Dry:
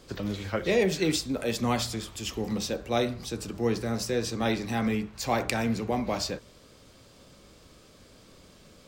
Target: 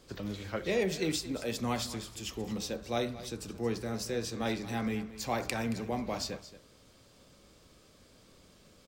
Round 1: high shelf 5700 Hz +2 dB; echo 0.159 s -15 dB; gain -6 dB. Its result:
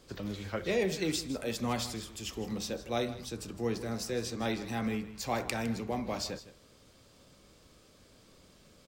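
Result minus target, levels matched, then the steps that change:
echo 66 ms early
change: echo 0.225 s -15 dB

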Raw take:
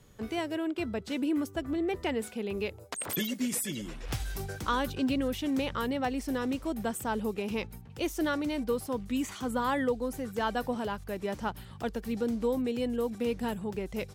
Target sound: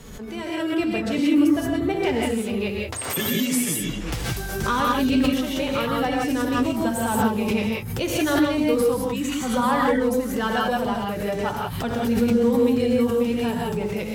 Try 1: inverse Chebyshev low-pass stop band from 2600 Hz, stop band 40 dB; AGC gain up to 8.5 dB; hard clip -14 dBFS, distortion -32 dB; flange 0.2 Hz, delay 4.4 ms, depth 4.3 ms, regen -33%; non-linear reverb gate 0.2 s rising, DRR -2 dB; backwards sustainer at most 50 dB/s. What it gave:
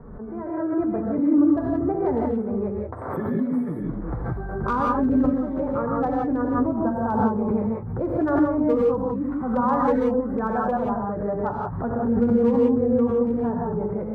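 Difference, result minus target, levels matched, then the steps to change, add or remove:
2000 Hz band -9.5 dB
remove: inverse Chebyshev low-pass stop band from 2600 Hz, stop band 40 dB

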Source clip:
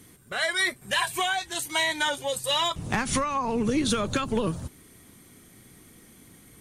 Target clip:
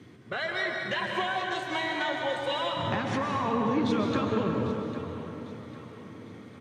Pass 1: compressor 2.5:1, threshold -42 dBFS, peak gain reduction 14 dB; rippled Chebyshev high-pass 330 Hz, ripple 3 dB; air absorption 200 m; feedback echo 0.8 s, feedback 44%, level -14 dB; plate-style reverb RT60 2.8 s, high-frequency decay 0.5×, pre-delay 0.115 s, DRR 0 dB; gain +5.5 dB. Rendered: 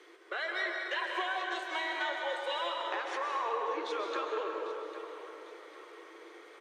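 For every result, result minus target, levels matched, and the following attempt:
250 Hz band -12.0 dB; compressor: peak gain reduction +5 dB
compressor 2.5:1, threshold -42 dBFS, peak gain reduction 14 dB; rippled Chebyshev high-pass 85 Hz, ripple 3 dB; air absorption 200 m; feedback echo 0.8 s, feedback 44%, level -14 dB; plate-style reverb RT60 2.8 s, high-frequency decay 0.5×, pre-delay 0.115 s, DRR 0 dB; gain +5.5 dB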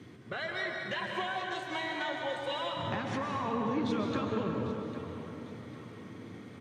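compressor: peak gain reduction +5 dB
compressor 2.5:1, threshold -33.5 dBFS, peak gain reduction 9 dB; rippled Chebyshev high-pass 85 Hz, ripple 3 dB; air absorption 200 m; feedback echo 0.8 s, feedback 44%, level -14 dB; plate-style reverb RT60 2.8 s, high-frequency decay 0.5×, pre-delay 0.115 s, DRR 0 dB; gain +5.5 dB

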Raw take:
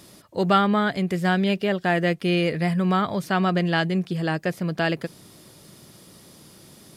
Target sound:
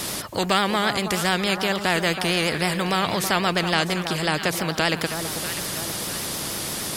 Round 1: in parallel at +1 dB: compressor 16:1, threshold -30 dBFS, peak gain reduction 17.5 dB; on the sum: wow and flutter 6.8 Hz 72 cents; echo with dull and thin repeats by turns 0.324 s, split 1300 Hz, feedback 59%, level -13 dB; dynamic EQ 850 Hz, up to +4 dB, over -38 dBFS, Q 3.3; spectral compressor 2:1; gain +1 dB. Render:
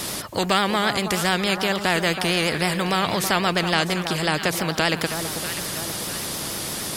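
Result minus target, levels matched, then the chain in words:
compressor: peak gain reduction -6.5 dB
in parallel at +1 dB: compressor 16:1, threshold -37 dBFS, peak gain reduction 24 dB; on the sum: wow and flutter 6.8 Hz 72 cents; echo with dull and thin repeats by turns 0.324 s, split 1300 Hz, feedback 59%, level -13 dB; dynamic EQ 850 Hz, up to +4 dB, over -38 dBFS, Q 3.3; spectral compressor 2:1; gain +1 dB

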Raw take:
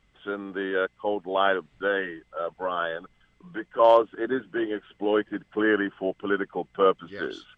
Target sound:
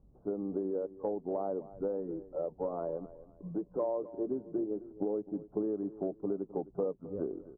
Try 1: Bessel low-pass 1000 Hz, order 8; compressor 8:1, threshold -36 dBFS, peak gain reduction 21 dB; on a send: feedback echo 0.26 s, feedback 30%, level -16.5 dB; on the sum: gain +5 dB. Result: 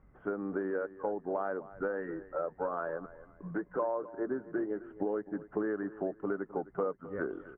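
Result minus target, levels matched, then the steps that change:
1000 Hz band +5.5 dB
change: Bessel low-pass 480 Hz, order 8

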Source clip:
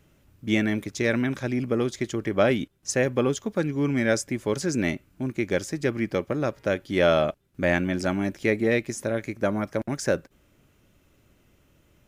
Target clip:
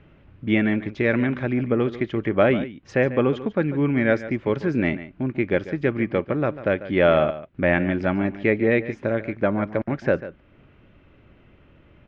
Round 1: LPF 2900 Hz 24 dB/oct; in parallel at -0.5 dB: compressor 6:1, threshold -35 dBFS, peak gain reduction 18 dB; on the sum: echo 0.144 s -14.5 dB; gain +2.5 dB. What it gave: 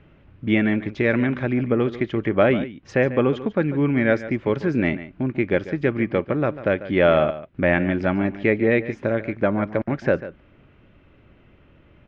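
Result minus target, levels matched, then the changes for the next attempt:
compressor: peak gain reduction -8.5 dB
change: compressor 6:1, threshold -45 dBFS, peak gain reduction 26.5 dB

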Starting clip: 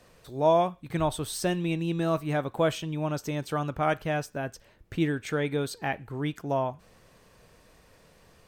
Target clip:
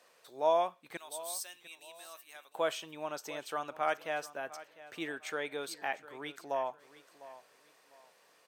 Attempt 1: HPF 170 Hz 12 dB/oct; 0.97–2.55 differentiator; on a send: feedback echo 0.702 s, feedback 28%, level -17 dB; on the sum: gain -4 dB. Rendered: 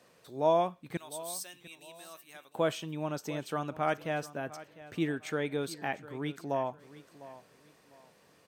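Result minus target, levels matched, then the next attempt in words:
125 Hz band +16.0 dB
HPF 560 Hz 12 dB/oct; 0.97–2.55 differentiator; on a send: feedback echo 0.702 s, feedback 28%, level -17 dB; on the sum: gain -4 dB

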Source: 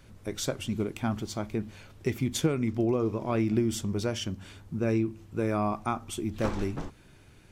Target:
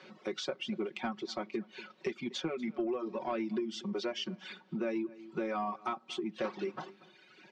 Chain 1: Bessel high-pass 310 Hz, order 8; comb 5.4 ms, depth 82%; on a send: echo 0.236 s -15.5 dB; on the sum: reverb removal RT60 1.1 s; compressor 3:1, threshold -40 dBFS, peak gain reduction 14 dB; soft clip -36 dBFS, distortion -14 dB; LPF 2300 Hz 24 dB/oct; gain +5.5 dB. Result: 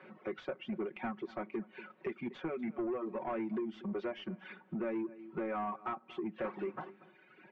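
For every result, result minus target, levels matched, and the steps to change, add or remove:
4000 Hz band -11.0 dB; soft clip: distortion +10 dB
change: LPF 4700 Hz 24 dB/oct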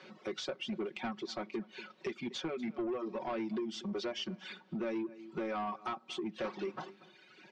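soft clip: distortion +10 dB
change: soft clip -28.5 dBFS, distortion -24 dB

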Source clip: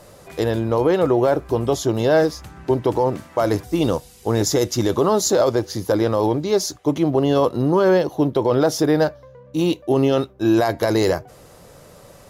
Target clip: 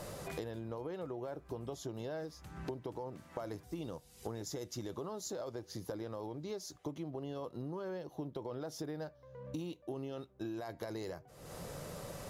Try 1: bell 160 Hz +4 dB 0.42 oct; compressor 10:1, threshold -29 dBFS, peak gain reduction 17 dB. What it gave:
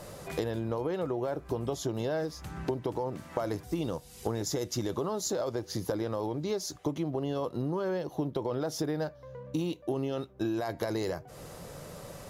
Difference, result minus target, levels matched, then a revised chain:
compressor: peak gain reduction -10 dB
bell 160 Hz +4 dB 0.42 oct; compressor 10:1, threshold -40 dBFS, peak gain reduction 27 dB

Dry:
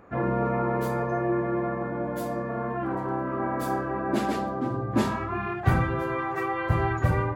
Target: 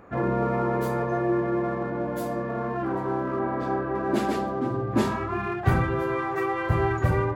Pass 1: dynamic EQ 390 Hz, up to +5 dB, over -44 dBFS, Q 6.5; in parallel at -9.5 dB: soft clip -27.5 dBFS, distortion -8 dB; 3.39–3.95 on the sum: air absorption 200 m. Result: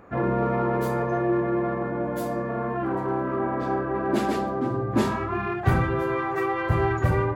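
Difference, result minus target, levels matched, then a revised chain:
soft clip: distortion -5 dB
dynamic EQ 390 Hz, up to +5 dB, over -44 dBFS, Q 6.5; in parallel at -9.5 dB: soft clip -39.5 dBFS, distortion -3 dB; 3.39–3.95 on the sum: air absorption 200 m

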